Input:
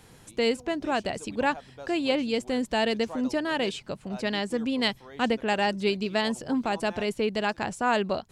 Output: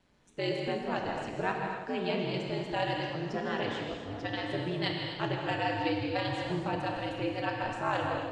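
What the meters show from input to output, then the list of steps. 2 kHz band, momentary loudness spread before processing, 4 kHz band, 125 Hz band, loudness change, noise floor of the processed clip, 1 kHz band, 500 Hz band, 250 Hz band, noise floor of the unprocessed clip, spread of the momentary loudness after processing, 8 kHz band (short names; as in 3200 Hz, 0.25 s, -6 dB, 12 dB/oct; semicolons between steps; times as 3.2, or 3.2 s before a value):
-5.0 dB, 5 LU, -6.5 dB, +4.0 dB, -5.5 dB, -43 dBFS, -3.5 dB, -6.0 dB, -7.0 dB, -53 dBFS, 4 LU, under -10 dB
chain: LPF 5000 Hz 12 dB/oct; spectral noise reduction 8 dB; ring modulator 92 Hz; non-linear reverb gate 0.3 s flat, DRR 0.5 dB; warbling echo 0.161 s, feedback 75%, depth 94 cents, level -13 dB; gain -4.5 dB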